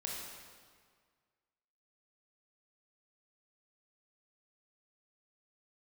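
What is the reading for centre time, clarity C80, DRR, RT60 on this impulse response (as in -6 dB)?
95 ms, 2.0 dB, -3.0 dB, 1.8 s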